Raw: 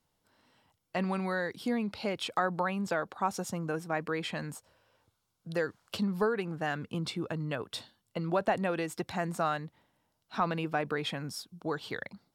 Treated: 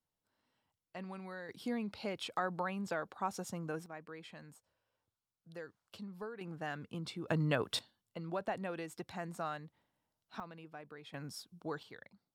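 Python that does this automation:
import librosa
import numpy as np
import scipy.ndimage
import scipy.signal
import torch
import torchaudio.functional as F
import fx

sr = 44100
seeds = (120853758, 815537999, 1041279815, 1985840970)

y = fx.gain(x, sr, db=fx.steps((0.0, -14.0), (1.49, -6.5), (3.86, -16.0), (6.41, -8.0), (7.28, 2.5), (7.79, -9.5), (10.4, -19.0), (11.14, -7.0), (11.83, -15.5)))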